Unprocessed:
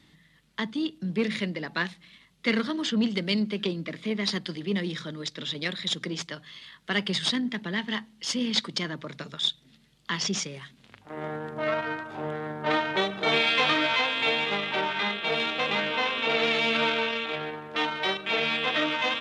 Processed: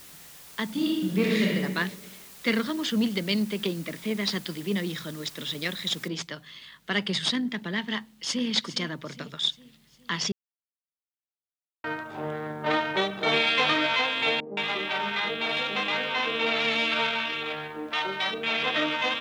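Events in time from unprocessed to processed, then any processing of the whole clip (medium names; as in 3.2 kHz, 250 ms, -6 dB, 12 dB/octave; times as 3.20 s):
0.65–1.55 s: reverb throw, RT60 1.3 s, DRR -3 dB
6.08 s: noise floor step -48 dB -69 dB
7.96–8.47 s: echo throw 410 ms, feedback 50%, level -13.5 dB
10.32–11.84 s: mute
14.40–18.63 s: three bands offset in time mids, highs, lows 170/210 ms, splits 160/530 Hz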